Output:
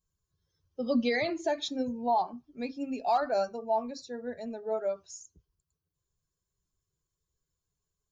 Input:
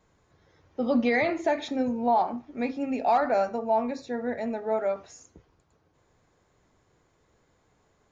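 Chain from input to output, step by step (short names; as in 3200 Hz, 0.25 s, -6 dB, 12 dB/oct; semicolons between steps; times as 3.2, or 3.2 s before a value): per-bin expansion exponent 1.5; resonant high shelf 3100 Hz +7 dB, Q 1.5; gain -2 dB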